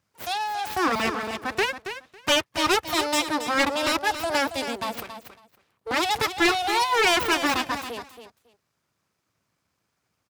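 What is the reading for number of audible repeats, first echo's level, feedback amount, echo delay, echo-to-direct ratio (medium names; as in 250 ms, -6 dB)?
2, -10.0 dB, 16%, 276 ms, -10.0 dB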